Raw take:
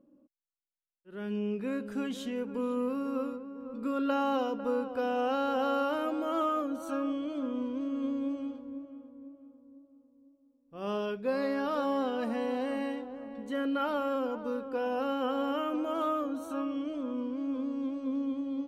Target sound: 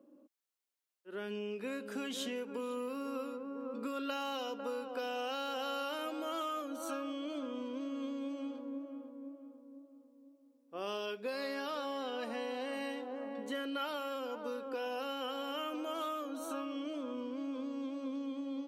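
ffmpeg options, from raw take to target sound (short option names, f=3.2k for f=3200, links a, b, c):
-filter_complex "[0:a]asettb=1/sr,asplit=3[a][b][c];[a]atrim=end=11.714[d];[b]atrim=start=11.71:end=12.73,asetpts=PTS-STARTPTS,afade=t=in:d=0.004:c=qsin,afade=t=out:st=1.016:d=0.004:c=qsin,highshelf=f=6.5k:g=-7.5[e];[c]atrim=start=12.726[f];[d][e]acrossfade=d=0.004:c1=hsin:c2=qsin[g];[g][f]acrossfade=d=0.004:c1=qsin:c2=hsin,acrossover=split=240|2400[h][i][j];[h]acrusher=bits=4:mix=0:aa=0.000001[k];[i]acompressor=threshold=-42dB:ratio=6[l];[k][l][j]amix=inputs=3:normalize=0,volume=4.5dB"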